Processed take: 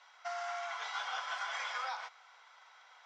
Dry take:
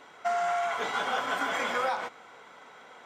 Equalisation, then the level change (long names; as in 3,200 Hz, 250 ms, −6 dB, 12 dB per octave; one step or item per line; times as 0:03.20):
inverse Chebyshev high-pass filter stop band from 220 Hz, stop band 60 dB
transistor ladder low-pass 6,200 Hz, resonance 50%
+1.0 dB